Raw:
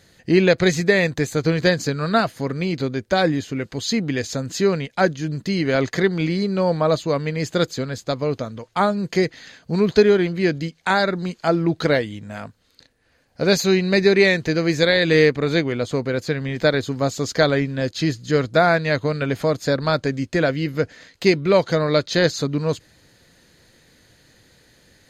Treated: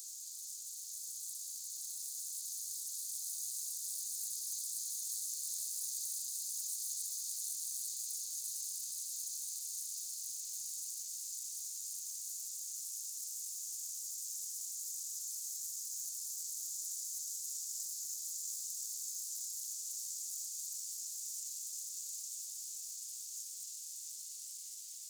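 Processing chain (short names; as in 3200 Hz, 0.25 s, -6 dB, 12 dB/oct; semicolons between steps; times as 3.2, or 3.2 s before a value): Paulstretch 20×, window 1.00 s, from 3.59; full-wave rectifier; inverse Chebyshev high-pass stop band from 1300 Hz, stop band 80 dB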